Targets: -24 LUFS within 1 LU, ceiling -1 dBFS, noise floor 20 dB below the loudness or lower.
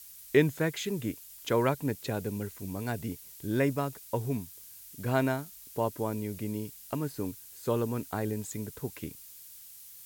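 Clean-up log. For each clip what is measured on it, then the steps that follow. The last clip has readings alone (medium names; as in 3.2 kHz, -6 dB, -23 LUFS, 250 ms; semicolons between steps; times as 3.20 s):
noise floor -50 dBFS; noise floor target -53 dBFS; loudness -32.5 LUFS; peak level -10.5 dBFS; loudness target -24.0 LUFS
-> noise print and reduce 6 dB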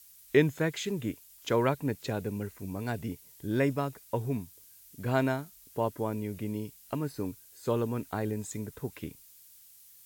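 noise floor -56 dBFS; loudness -32.5 LUFS; peak level -10.5 dBFS; loudness target -24.0 LUFS
-> trim +8.5 dB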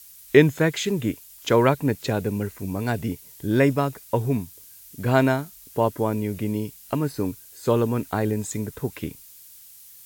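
loudness -24.0 LUFS; peak level -2.0 dBFS; noise floor -47 dBFS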